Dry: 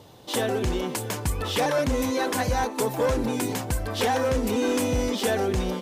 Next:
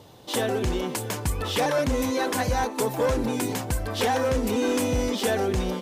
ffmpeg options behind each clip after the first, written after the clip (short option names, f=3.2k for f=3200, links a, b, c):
-af anull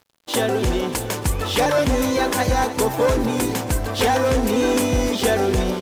-af "aeval=exprs='sgn(val(0))*max(abs(val(0))-0.00668,0)':c=same,aecho=1:1:294|588|882|1176|1470|1764:0.211|0.118|0.0663|0.0371|0.0208|0.0116,volume=6dB"